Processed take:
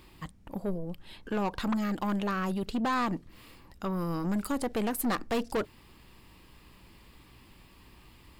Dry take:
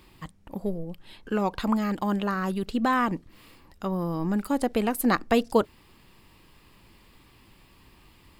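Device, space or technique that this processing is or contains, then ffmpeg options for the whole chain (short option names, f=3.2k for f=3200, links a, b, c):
valve amplifier with mains hum: -filter_complex "[0:a]aeval=exprs='(tanh(17.8*val(0)+0.2)-tanh(0.2))/17.8':c=same,aeval=exprs='val(0)+0.000891*(sin(2*PI*60*n/s)+sin(2*PI*2*60*n/s)/2+sin(2*PI*3*60*n/s)/3+sin(2*PI*4*60*n/s)/4+sin(2*PI*5*60*n/s)/5)':c=same,asettb=1/sr,asplit=3[a][b][c];[a]atrim=end=3.974[d];[b]atrim=start=3.97:end=4.52,asetpts=PTS-STARTPTS,afade=t=in:d=0.004:c=qsin,afade=t=out:st=0.546:d=0.004:c=qsin,equalizer=f=8k:w=0.5:g=5[e];[c]atrim=start=4.516[f];[d][e]acrossfade=d=0.004:c1=hsin:c2=qsin[g];[g][f]acrossfade=d=0.004:c1=qsin:c2=hsin"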